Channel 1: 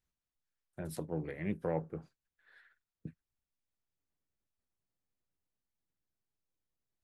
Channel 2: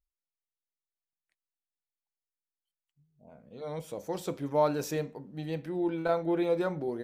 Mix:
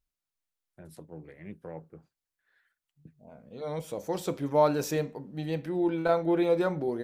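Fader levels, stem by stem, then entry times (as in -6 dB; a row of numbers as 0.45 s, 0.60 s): -7.5 dB, +3.0 dB; 0.00 s, 0.00 s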